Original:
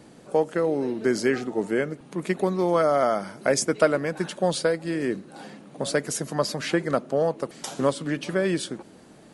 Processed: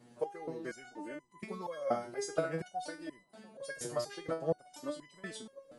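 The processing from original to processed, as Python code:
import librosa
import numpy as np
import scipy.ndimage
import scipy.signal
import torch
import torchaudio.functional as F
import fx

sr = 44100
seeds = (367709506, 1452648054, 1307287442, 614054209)

y = fx.stretch_vocoder(x, sr, factor=0.62)
y = fx.echo_wet_bandpass(y, sr, ms=695, feedback_pct=53, hz=450.0, wet_db=-16.0)
y = fx.resonator_held(y, sr, hz=4.2, low_hz=120.0, high_hz=1000.0)
y = y * 10.0 ** (1.0 / 20.0)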